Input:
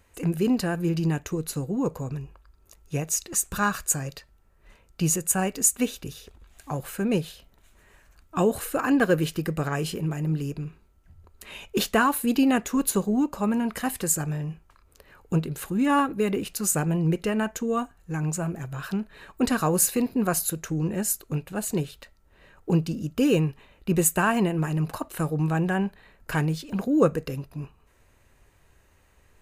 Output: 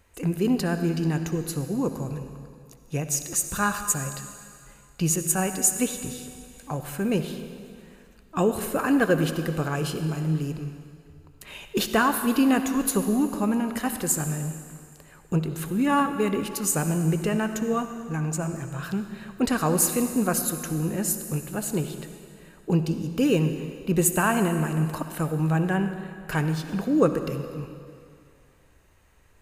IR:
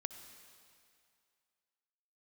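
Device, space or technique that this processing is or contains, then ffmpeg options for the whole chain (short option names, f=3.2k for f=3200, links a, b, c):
stairwell: -filter_complex "[1:a]atrim=start_sample=2205[a];[0:a][a]afir=irnorm=-1:irlink=0,asettb=1/sr,asplit=3[b][c][d];[b]atrim=end=9.544[e];[c]atrim=start=9.54:end=10.2,asetpts=PTS-STARTPTS,afade=t=in:d=0.004:c=qsin,afade=t=out:st=0.656:d=0.004:c=qsin,bandreject=f=1.9k:w=7.9[f];[d]atrim=start=10.196[g];[e][f]acrossfade=d=0.004:c1=hsin:c2=qsin[h];[h][g]acrossfade=d=0.004:c1=qsin:c2=hsin,volume=2.5dB"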